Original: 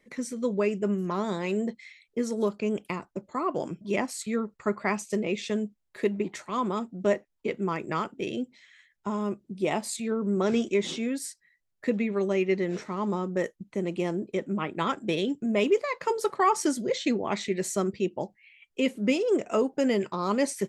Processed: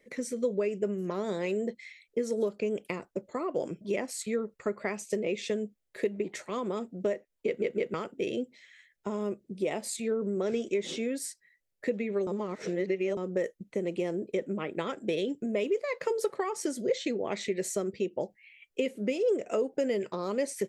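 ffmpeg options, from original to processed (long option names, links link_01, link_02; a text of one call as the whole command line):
ffmpeg -i in.wav -filter_complex "[0:a]asplit=6[link_01][link_02][link_03][link_04][link_05][link_06];[link_01]atrim=end=7.622[link_07];[link_02]atrim=start=7.458:end=7.622[link_08];[link_03]atrim=start=7.458:end=7.622[link_09];[link_04]atrim=start=7.938:end=12.272[link_10];[link_05]atrim=start=12.268:end=13.172,asetpts=PTS-STARTPTS,areverse[link_11];[link_06]atrim=start=13.168[link_12];[link_07][link_08]acrossfade=duration=0.004:curve1=hsin:curve2=hsin[link_13];[link_13][link_09]acrossfade=duration=0.004:curve1=hsin:curve2=hsin[link_14];[link_14][link_10]acrossfade=duration=0.004:curve1=hsin:curve2=hsin[link_15];[link_15][link_11]acrossfade=duration=0.004:curve1=hsin:curve2=hsin[link_16];[link_16][link_12]acrossfade=duration=0.004:curve1=hsin:curve2=hsin,highshelf=frequency=5100:gain=5,acompressor=threshold=-28dB:ratio=6,equalizer=frequency=500:width_type=o:width=1:gain=10,equalizer=frequency=1000:width_type=o:width=1:gain=-5,equalizer=frequency=2000:width_type=o:width=1:gain=4,volume=-3.5dB" out.wav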